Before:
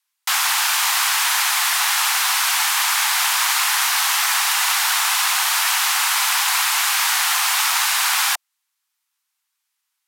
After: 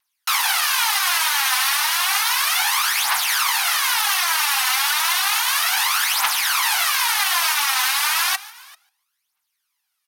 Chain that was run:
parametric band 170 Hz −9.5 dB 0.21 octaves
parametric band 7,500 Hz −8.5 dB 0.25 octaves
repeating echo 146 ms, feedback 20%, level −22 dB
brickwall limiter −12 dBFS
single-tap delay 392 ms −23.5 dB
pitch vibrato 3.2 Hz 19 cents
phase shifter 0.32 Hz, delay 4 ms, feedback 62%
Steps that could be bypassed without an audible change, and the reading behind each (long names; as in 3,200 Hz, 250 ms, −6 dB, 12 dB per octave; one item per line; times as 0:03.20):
parametric band 170 Hz: nothing at its input below 600 Hz